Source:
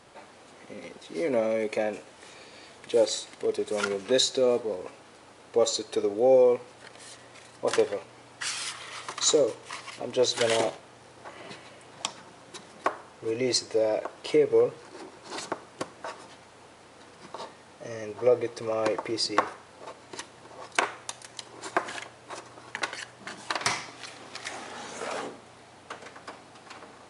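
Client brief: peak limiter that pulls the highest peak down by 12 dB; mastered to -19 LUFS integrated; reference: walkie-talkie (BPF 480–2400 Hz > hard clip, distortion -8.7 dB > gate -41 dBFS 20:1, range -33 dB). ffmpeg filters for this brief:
-af "alimiter=limit=-17.5dB:level=0:latency=1,highpass=480,lowpass=2.4k,asoftclip=type=hard:threshold=-30dB,agate=range=-33dB:threshold=-41dB:ratio=20,volume=19dB"

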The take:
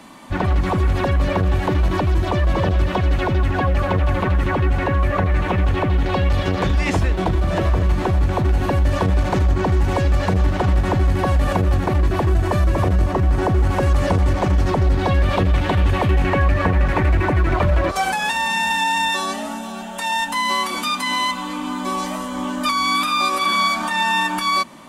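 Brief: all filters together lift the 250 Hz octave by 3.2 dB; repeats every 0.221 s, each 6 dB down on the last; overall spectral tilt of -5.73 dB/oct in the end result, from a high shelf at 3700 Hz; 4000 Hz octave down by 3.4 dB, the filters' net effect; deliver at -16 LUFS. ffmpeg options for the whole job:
-af "equalizer=f=250:t=o:g=4.5,highshelf=f=3.7k:g=5.5,equalizer=f=4k:t=o:g=-7.5,aecho=1:1:221|442|663|884|1105|1326:0.501|0.251|0.125|0.0626|0.0313|0.0157,volume=1.5dB"

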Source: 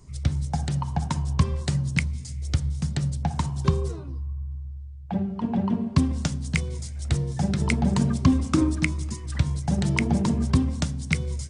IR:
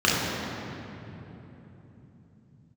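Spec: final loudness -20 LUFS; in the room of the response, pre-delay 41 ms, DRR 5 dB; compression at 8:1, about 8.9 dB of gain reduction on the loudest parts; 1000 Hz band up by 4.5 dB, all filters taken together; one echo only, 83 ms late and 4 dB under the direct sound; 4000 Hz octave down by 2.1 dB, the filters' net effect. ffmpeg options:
-filter_complex "[0:a]equalizer=f=1k:t=o:g=5.5,equalizer=f=4k:t=o:g=-3,acompressor=threshold=-23dB:ratio=8,aecho=1:1:83:0.631,asplit=2[a][b];[1:a]atrim=start_sample=2205,adelay=41[c];[b][c]afir=irnorm=-1:irlink=0,volume=-24.5dB[d];[a][d]amix=inputs=2:normalize=0,volume=6dB"

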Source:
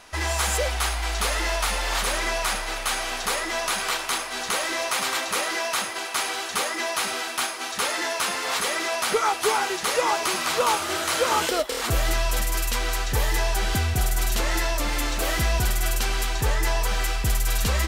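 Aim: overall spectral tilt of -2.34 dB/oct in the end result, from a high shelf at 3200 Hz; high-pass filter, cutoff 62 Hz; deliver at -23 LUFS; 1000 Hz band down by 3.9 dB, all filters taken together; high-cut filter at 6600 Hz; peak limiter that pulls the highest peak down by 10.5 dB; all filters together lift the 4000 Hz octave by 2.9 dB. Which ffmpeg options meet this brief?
-af "highpass=62,lowpass=6.6k,equalizer=f=1k:t=o:g=-5,highshelf=f=3.2k:g=-3.5,equalizer=f=4k:t=o:g=7,volume=7dB,alimiter=limit=-15.5dB:level=0:latency=1"

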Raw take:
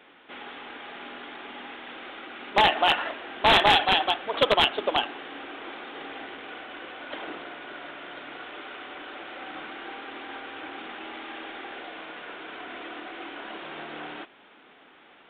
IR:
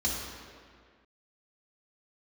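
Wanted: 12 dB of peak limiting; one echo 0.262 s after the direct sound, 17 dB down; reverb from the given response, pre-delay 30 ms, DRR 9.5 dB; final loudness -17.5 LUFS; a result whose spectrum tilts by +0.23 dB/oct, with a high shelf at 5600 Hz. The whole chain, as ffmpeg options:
-filter_complex "[0:a]highshelf=f=5.6k:g=4,alimiter=limit=-21dB:level=0:latency=1,aecho=1:1:262:0.141,asplit=2[a][b];[1:a]atrim=start_sample=2205,adelay=30[c];[b][c]afir=irnorm=-1:irlink=0,volume=-17dB[d];[a][d]amix=inputs=2:normalize=0,volume=17.5dB"

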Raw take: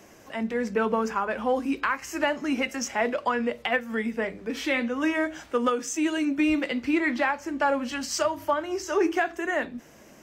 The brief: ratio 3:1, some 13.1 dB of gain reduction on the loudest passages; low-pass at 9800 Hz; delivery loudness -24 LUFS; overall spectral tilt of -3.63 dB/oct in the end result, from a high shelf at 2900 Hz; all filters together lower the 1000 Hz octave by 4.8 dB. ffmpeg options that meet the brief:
-af "lowpass=9.8k,equalizer=f=1k:t=o:g=-5.5,highshelf=f=2.9k:g=-5.5,acompressor=threshold=-39dB:ratio=3,volume=15.5dB"

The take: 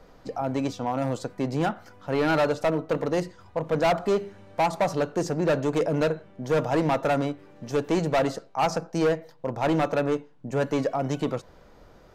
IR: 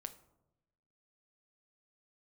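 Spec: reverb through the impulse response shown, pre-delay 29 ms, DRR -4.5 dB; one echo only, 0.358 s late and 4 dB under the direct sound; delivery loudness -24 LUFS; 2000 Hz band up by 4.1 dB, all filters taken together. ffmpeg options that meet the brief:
-filter_complex "[0:a]equalizer=f=2k:t=o:g=5.5,aecho=1:1:358:0.631,asplit=2[a][b];[1:a]atrim=start_sample=2205,adelay=29[c];[b][c]afir=irnorm=-1:irlink=0,volume=8.5dB[d];[a][d]amix=inputs=2:normalize=0,volume=-5.5dB"

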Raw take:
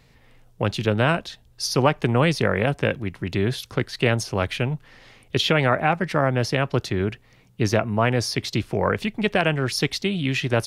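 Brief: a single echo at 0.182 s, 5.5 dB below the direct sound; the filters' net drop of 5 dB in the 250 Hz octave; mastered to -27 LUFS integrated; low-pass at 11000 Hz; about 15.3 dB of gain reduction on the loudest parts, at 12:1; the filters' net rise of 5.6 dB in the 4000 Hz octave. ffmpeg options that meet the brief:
-af "lowpass=11k,equalizer=f=250:t=o:g=-7.5,equalizer=f=4k:t=o:g=7.5,acompressor=threshold=-29dB:ratio=12,aecho=1:1:182:0.531,volume=5.5dB"

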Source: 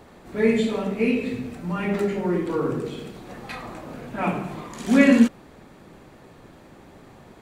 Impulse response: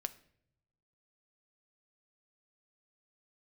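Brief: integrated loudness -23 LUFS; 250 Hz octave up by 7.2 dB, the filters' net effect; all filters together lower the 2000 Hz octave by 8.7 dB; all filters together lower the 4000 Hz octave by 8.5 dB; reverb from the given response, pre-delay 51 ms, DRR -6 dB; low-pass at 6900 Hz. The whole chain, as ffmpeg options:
-filter_complex "[0:a]lowpass=6.9k,equalizer=f=250:t=o:g=8,equalizer=f=2k:t=o:g=-8.5,equalizer=f=4k:t=o:g=-7.5,asplit=2[a][b];[1:a]atrim=start_sample=2205,adelay=51[c];[b][c]afir=irnorm=-1:irlink=0,volume=7dB[d];[a][d]amix=inputs=2:normalize=0,volume=-13dB"

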